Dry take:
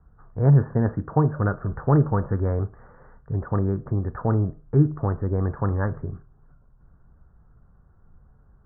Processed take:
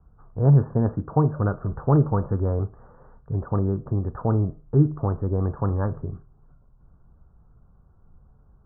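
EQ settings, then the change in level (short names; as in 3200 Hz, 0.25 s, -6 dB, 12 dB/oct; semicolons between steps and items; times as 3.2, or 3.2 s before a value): LPF 1300 Hz 24 dB/oct; 0.0 dB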